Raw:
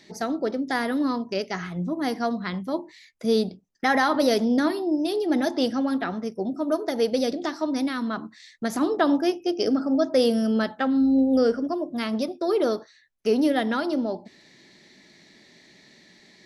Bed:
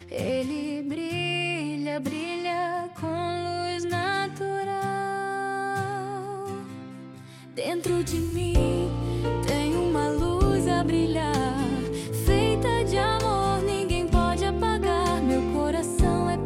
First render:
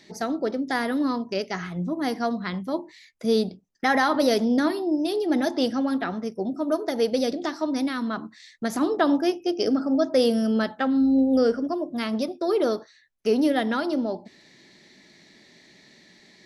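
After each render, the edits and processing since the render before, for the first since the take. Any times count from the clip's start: nothing audible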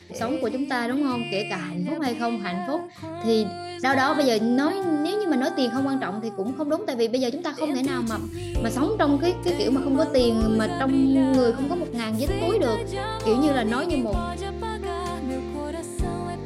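add bed -5.5 dB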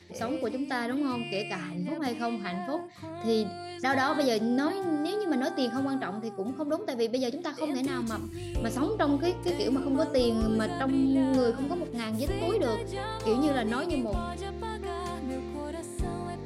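gain -5.5 dB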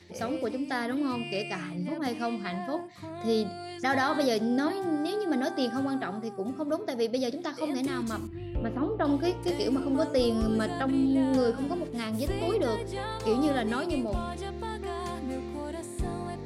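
8.27–9.05 air absorption 440 m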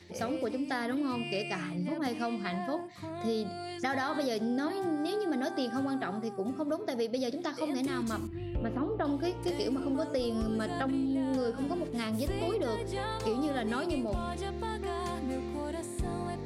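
compressor, threshold -28 dBFS, peak gain reduction 7.5 dB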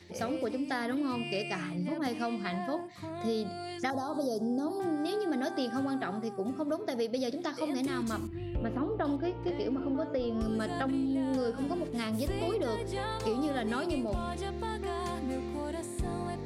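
3.9–4.8 Butterworth band-stop 2300 Hz, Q 0.53; 9.16–10.41 air absorption 240 m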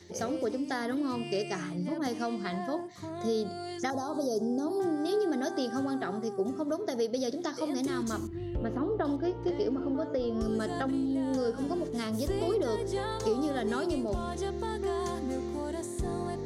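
thirty-one-band EQ 400 Hz +6 dB, 2500 Hz -8 dB, 6300 Hz +9 dB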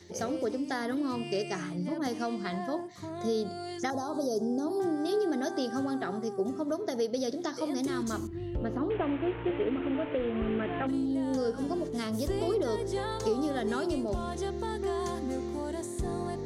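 8.9–10.87 delta modulation 16 kbps, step -34.5 dBFS

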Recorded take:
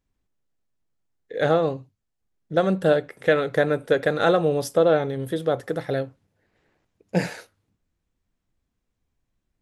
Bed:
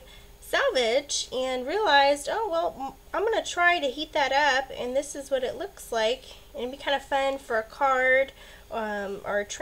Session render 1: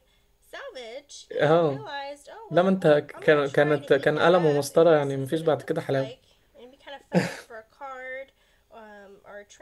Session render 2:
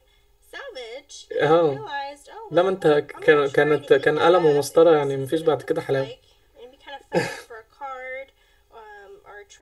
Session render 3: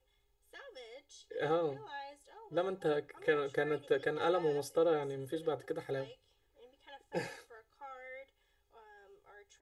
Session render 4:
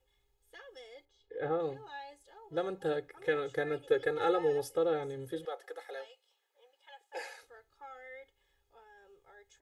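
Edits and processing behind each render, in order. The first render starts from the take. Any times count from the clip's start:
add bed -15.5 dB
comb 2.4 ms, depth 96%
gain -15.5 dB
1.05–1.6 Bessel low-pass 1600 Hz; 3.86–4.74 comb 2.3 ms, depth 54%; 5.45–7.43 HPF 540 Hz 24 dB/oct

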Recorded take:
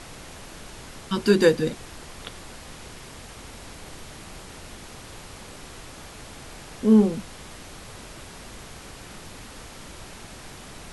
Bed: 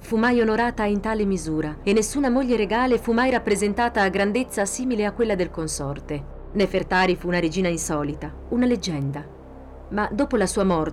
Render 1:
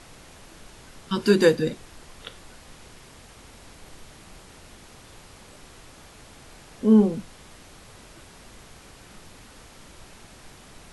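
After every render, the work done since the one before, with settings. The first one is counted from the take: noise print and reduce 6 dB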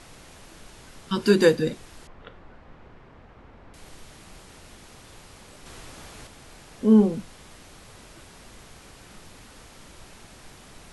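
2.07–3.74 LPF 1600 Hz; 5.66–6.27 gain +4.5 dB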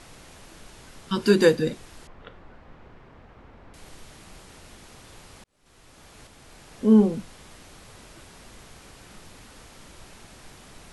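5.44–6.78 fade in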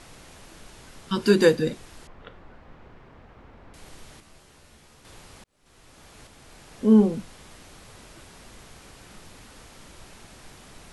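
4.2–5.05 resonator 73 Hz, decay 0.26 s, mix 80%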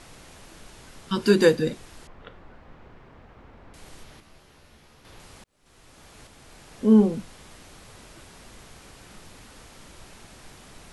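4.03–5.2 bell 8200 Hz -7.5 dB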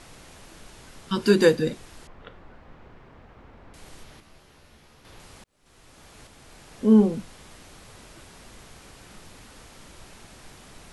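nothing audible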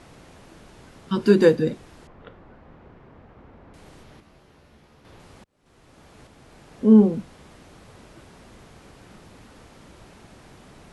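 HPF 190 Hz 6 dB/oct; tilt -2.5 dB/oct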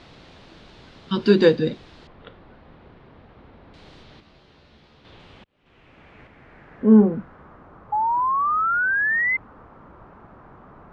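low-pass sweep 4000 Hz -> 1200 Hz, 4.89–7.66; 7.92–9.37 painted sound rise 830–2100 Hz -21 dBFS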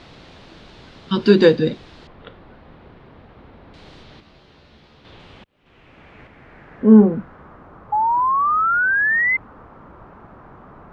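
gain +3.5 dB; limiter -1 dBFS, peak gain reduction 1.5 dB

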